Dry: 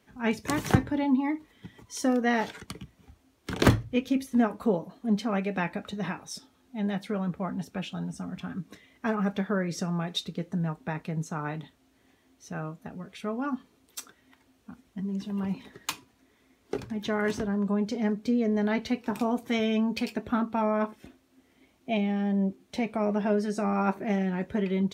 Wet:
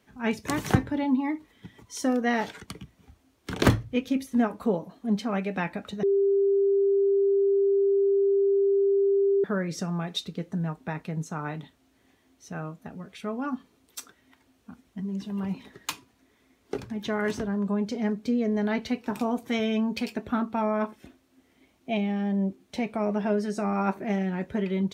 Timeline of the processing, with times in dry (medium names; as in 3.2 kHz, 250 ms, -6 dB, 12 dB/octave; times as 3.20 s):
6.03–9.44 s: bleep 396 Hz -19 dBFS